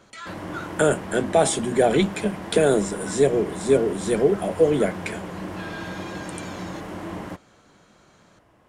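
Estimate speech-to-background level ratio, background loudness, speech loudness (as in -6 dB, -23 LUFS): 12.5 dB, -34.5 LUFS, -22.0 LUFS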